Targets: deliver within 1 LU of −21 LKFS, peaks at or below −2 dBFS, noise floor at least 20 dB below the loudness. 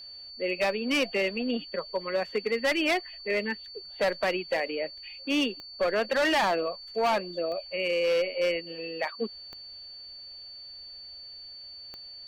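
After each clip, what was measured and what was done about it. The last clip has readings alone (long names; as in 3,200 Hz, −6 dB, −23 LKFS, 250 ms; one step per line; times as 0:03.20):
number of clicks 5; interfering tone 4,500 Hz; level of the tone −42 dBFS; integrated loudness −28.5 LKFS; sample peak −18.0 dBFS; target loudness −21.0 LKFS
→ click removal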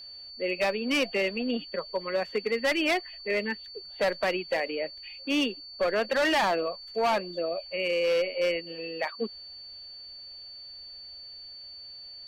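number of clicks 0; interfering tone 4,500 Hz; level of the tone −42 dBFS
→ notch filter 4,500 Hz, Q 30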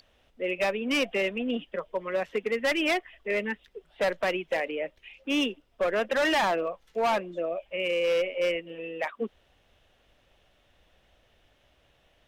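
interfering tone none found; integrated loudness −29.0 LKFS; sample peak −18.5 dBFS; target loudness −21.0 LKFS
→ level +8 dB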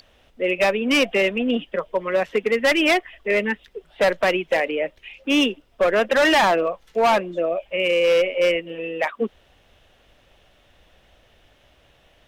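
integrated loudness −21.0 LKFS; sample peak −10.5 dBFS; background noise floor −58 dBFS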